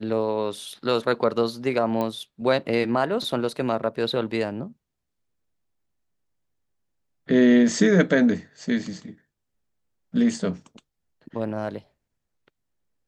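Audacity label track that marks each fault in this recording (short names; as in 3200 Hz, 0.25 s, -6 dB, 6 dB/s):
2.010000	2.010000	pop -15 dBFS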